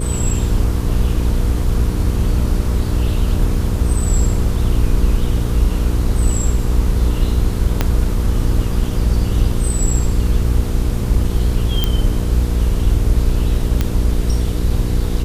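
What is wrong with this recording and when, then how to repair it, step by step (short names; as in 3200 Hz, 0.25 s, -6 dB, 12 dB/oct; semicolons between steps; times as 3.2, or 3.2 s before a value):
hum 60 Hz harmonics 8 -20 dBFS
7.81 pop -1 dBFS
11.84 pop -3 dBFS
13.81 pop -4 dBFS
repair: de-click; de-hum 60 Hz, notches 8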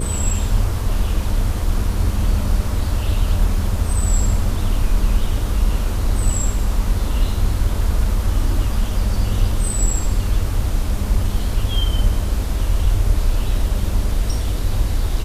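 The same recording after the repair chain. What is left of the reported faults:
7.81 pop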